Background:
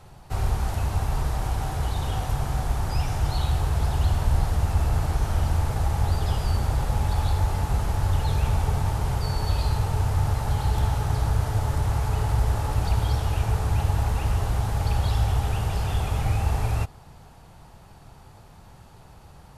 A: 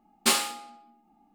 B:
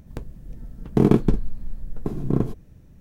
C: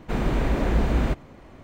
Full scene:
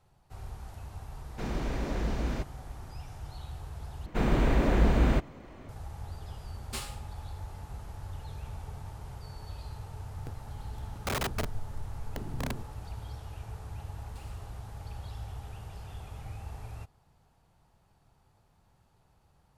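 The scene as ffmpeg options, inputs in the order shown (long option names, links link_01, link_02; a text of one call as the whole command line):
ffmpeg -i bed.wav -i cue0.wav -i cue1.wav -i cue2.wav -filter_complex "[3:a]asplit=2[link_01][link_02];[1:a]asplit=2[link_03][link_04];[0:a]volume=-18dB[link_05];[link_01]equalizer=frequency=5400:width_type=o:width=0.77:gain=9[link_06];[2:a]aeval=exprs='(mod(5.62*val(0)+1,2)-1)/5.62':channel_layout=same[link_07];[link_04]acompressor=threshold=-43dB:ratio=6:attack=3.2:release=140:knee=1:detection=peak[link_08];[link_05]asplit=2[link_09][link_10];[link_09]atrim=end=4.064[link_11];[link_02]atrim=end=1.63,asetpts=PTS-STARTPTS,volume=-1.5dB[link_12];[link_10]atrim=start=5.686[link_13];[link_06]atrim=end=1.63,asetpts=PTS-STARTPTS,volume=-9.5dB,afade=type=in:duration=0.004:curve=hsin,afade=type=out:start_time=1.626:duration=0.004:curve=hsin,adelay=1290[link_14];[link_03]atrim=end=1.34,asetpts=PTS-STARTPTS,volume=-16.5dB,afade=type=in:duration=0.004:curve=hsin,afade=type=out:start_time=1.336:duration=0.004:curve=hsin,adelay=6470[link_15];[link_07]atrim=end=3,asetpts=PTS-STARTPTS,volume=-11dB,afade=type=in:duration=0.004:curve=hsin,afade=type=out:start_time=2.996:duration=0.004:curve=hsin,adelay=445410S[link_16];[link_08]atrim=end=1.34,asetpts=PTS-STARTPTS,volume=-15dB,afade=type=in:duration=0.004:curve=hsin,afade=type=out:start_time=1.336:duration=0.004:curve=hsin,adelay=13900[link_17];[link_11][link_12]acrossfade=duration=0.004:curve1=hsin:curve2=hsin[link_18];[link_18][link_13]acrossfade=duration=0.004:curve1=hsin:curve2=hsin[link_19];[link_19][link_14][link_15][link_16][link_17]amix=inputs=5:normalize=0" out.wav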